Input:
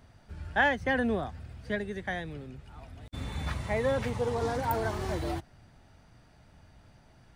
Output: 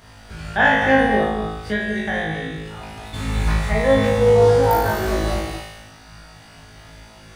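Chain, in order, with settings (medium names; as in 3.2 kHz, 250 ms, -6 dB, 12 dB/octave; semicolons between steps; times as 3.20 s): flutter echo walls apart 3.2 m, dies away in 0.82 s; gated-style reverb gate 270 ms rising, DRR 5.5 dB; tape noise reduction on one side only encoder only; trim +5 dB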